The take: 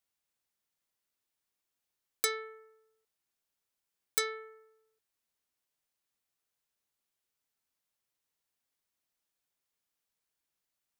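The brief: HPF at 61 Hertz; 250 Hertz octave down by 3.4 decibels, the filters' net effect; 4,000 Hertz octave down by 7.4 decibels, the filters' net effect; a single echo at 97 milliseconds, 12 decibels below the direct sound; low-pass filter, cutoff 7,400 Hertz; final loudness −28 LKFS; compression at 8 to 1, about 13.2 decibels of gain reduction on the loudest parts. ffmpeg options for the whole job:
ffmpeg -i in.wav -af "highpass=61,lowpass=7400,equalizer=frequency=250:width_type=o:gain=-6,equalizer=frequency=4000:width_type=o:gain=-8,acompressor=threshold=-44dB:ratio=8,aecho=1:1:97:0.251,volume=23.5dB" out.wav

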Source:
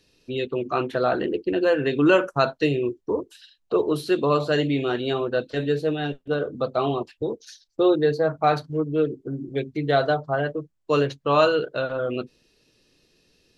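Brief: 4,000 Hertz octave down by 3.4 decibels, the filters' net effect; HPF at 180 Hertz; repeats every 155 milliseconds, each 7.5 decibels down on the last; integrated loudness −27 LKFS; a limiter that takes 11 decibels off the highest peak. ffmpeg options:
ffmpeg -i in.wav -af "highpass=180,equalizer=frequency=4000:width_type=o:gain=-4.5,alimiter=limit=-17.5dB:level=0:latency=1,aecho=1:1:155|310|465|620|775:0.422|0.177|0.0744|0.0312|0.0131,volume=0.5dB" out.wav

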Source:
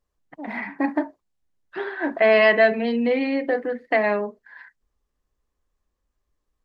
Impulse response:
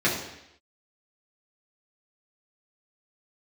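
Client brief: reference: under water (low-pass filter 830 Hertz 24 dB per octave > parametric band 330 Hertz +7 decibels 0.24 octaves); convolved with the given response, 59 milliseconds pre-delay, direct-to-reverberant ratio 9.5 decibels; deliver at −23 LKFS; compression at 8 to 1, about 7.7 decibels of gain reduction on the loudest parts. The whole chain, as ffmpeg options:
-filter_complex "[0:a]acompressor=threshold=-20dB:ratio=8,asplit=2[link_01][link_02];[1:a]atrim=start_sample=2205,adelay=59[link_03];[link_02][link_03]afir=irnorm=-1:irlink=0,volume=-24.5dB[link_04];[link_01][link_04]amix=inputs=2:normalize=0,lowpass=frequency=830:width=0.5412,lowpass=frequency=830:width=1.3066,equalizer=frequency=330:width_type=o:width=0.24:gain=7,volume=3dB"

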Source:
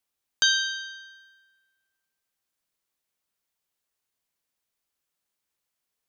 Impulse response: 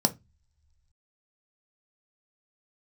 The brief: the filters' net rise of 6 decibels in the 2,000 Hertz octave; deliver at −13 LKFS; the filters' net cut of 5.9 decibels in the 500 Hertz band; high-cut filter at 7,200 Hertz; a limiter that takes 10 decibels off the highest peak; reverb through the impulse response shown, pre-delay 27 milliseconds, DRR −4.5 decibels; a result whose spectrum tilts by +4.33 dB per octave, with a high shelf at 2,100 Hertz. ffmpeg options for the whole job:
-filter_complex "[0:a]lowpass=7200,equalizer=frequency=500:width_type=o:gain=-9,equalizer=frequency=2000:width_type=o:gain=5.5,highshelf=frequency=2100:gain=8,alimiter=limit=-11.5dB:level=0:latency=1,asplit=2[link_01][link_02];[1:a]atrim=start_sample=2205,adelay=27[link_03];[link_02][link_03]afir=irnorm=-1:irlink=0,volume=-5dB[link_04];[link_01][link_04]amix=inputs=2:normalize=0,volume=7dB"

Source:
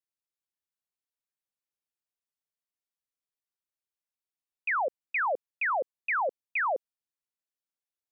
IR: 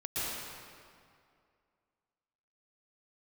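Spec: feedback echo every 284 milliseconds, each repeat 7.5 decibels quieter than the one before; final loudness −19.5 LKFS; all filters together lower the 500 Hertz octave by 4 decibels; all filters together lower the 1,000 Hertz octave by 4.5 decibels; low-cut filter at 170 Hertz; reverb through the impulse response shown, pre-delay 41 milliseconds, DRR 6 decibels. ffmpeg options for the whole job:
-filter_complex "[0:a]highpass=170,equalizer=frequency=500:width_type=o:gain=-3,equalizer=frequency=1000:width_type=o:gain=-5,aecho=1:1:284|568|852|1136|1420:0.422|0.177|0.0744|0.0312|0.0131,asplit=2[link_01][link_02];[1:a]atrim=start_sample=2205,adelay=41[link_03];[link_02][link_03]afir=irnorm=-1:irlink=0,volume=-12dB[link_04];[link_01][link_04]amix=inputs=2:normalize=0,volume=12.5dB"

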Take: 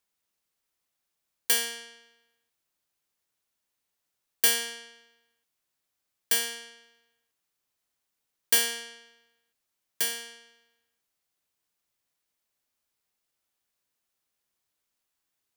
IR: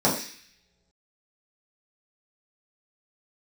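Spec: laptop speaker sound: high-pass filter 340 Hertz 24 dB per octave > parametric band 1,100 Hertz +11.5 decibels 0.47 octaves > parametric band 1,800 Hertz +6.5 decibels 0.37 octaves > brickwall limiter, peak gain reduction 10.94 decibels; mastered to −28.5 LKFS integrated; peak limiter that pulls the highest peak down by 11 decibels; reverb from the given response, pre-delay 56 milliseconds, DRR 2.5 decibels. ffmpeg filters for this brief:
-filter_complex "[0:a]alimiter=limit=-19.5dB:level=0:latency=1,asplit=2[link_01][link_02];[1:a]atrim=start_sample=2205,adelay=56[link_03];[link_02][link_03]afir=irnorm=-1:irlink=0,volume=-19dB[link_04];[link_01][link_04]amix=inputs=2:normalize=0,highpass=frequency=340:width=0.5412,highpass=frequency=340:width=1.3066,equalizer=frequency=1100:width_type=o:width=0.47:gain=11.5,equalizer=frequency=1800:width_type=o:width=0.37:gain=6.5,volume=9.5dB,alimiter=limit=-18dB:level=0:latency=1"

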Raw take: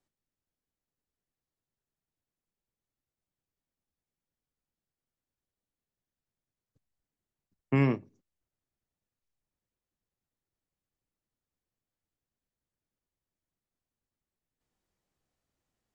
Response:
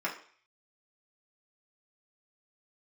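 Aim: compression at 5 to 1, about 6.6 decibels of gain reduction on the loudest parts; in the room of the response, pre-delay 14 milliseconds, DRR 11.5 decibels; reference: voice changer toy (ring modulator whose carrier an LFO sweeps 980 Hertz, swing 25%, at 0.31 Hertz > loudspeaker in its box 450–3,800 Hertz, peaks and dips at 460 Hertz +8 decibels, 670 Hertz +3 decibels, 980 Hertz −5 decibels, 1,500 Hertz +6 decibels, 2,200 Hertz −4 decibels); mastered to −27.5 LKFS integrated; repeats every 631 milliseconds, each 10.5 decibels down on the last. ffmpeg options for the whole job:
-filter_complex "[0:a]acompressor=threshold=-27dB:ratio=5,aecho=1:1:631|1262|1893:0.299|0.0896|0.0269,asplit=2[link_01][link_02];[1:a]atrim=start_sample=2205,adelay=14[link_03];[link_02][link_03]afir=irnorm=-1:irlink=0,volume=-18.5dB[link_04];[link_01][link_04]amix=inputs=2:normalize=0,aeval=exprs='val(0)*sin(2*PI*980*n/s+980*0.25/0.31*sin(2*PI*0.31*n/s))':channel_layout=same,highpass=450,equalizer=frequency=460:width_type=q:width=4:gain=8,equalizer=frequency=670:width_type=q:width=4:gain=3,equalizer=frequency=980:width_type=q:width=4:gain=-5,equalizer=frequency=1500:width_type=q:width=4:gain=6,equalizer=frequency=2200:width_type=q:width=4:gain=-4,lowpass=frequency=3800:width=0.5412,lowpass=frequency=3800:width=1.3066,volume=12dB"

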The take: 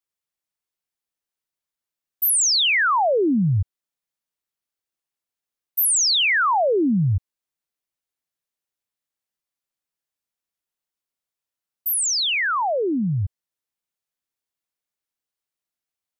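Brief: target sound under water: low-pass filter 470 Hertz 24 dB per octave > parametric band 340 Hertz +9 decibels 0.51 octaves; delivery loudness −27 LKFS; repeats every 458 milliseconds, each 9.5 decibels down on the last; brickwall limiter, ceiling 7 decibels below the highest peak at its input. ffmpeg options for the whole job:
ffmpeg -i in.wav -af "alimiter=limit=-22.5dB:level=0:latency=1,lowpass=frequency=470:width=0.5412,lowpass=frequency=470:width=1.3066,equalizer=frequency=340:width_type=o:width=0.51:gain=9,aecho=1:1:458|916|1374|1832:0.335|0.111|0.0365|0.012,volume=0.5dB" out.wav

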